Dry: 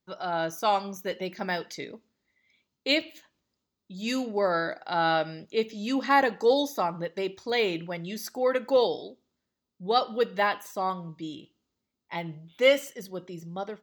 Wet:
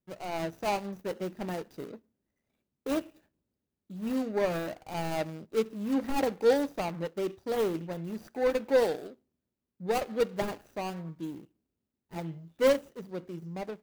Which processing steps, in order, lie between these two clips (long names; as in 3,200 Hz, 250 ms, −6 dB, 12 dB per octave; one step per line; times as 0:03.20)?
running median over 41 samples
high-shelf EQ 11,000 Hz +9 dB